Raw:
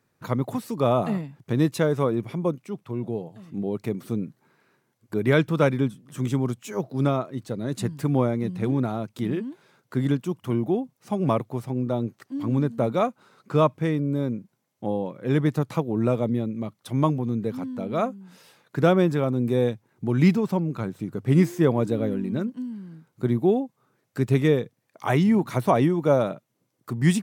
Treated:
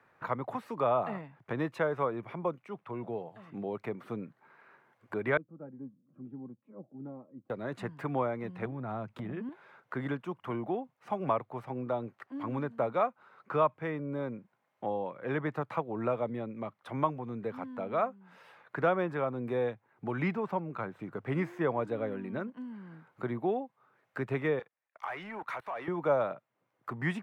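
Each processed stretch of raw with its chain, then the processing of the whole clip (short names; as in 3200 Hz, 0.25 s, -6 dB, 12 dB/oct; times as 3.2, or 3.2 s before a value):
5.37–7.5 ladder band-pass 200 Hz, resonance 20% + comb 3.7 ms, depth 44% + cascading phaser rising 1.5 Hz
8.65–9.49 tone controls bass +12 dB, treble 0 dB + compressor, threshold -24 dBFS
24.59–25.88 HPF 1500 Hz 6 dB/oct + level quantiser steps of 21 dB + sample leveller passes 2
whole clip: three-band isolator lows -15 dB, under 570 Hz, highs -24 dB, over 2400 Hz; three-band squash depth 40%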